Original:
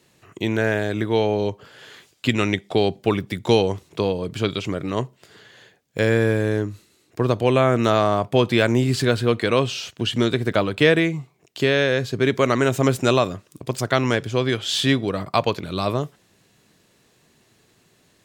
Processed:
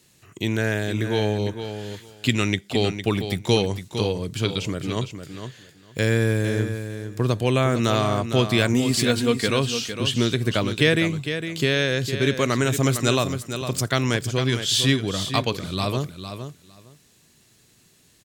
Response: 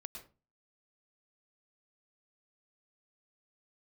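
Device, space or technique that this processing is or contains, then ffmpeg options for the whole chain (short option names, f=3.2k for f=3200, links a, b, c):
smiley-face EQ: -filter_complex "[0:a]lowshelf=f=170:g=5.5,equalizer=f=680:t=o:w=1.9:g=-4,equalizer=f=7.2k:t=o:w=2.5:g=4.5,highshelf=f=7.7k:g=7,asettb=1/sr,asplit=3[a][b][c];[a]atrim=end=8.734[d];[b]atrim=start=8.73:end=9.48,asetpts=PTS-STARTPTS,afade=t=in:d=0.004:c=qsin,afade=t=out:st=0.746:d=0.004:c=qsin,aecho=1:1:4.3:0.53,atrim=end_sample=33075[e];[c]atrim=start=9.476[f];[d][e]acrossfade=d=0.004:c1=hsin:c2=qsin[g];[g][f]acrossfade=d=0.004:c1=qsin:c2=hsin,aecho=1:1:457|914:0.355|0.0568,volume=-2.5dB"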